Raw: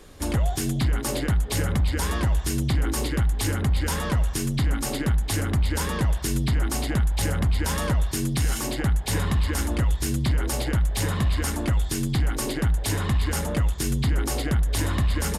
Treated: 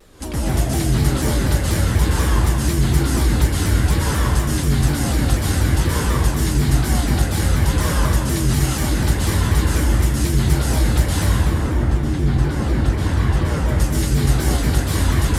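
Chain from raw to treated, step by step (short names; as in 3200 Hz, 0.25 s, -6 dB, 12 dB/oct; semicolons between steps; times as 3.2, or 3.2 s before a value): 11.26–13.58 LPF 1200 Hz -> 2700 Hz 6 dB/oct; plate-style reverb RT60 1.9 s, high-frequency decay 0.8×, pre-delay 0.115 s, DRR -6.5 dB; shaped vibrato saw down 4.1 Hz, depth 160 cents; gain -1.5 dB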